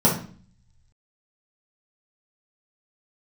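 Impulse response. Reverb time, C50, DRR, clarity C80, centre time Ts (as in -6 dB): 0.45 s, 6.0 dB, -6.0 dB, 12.0 dB, 28 ms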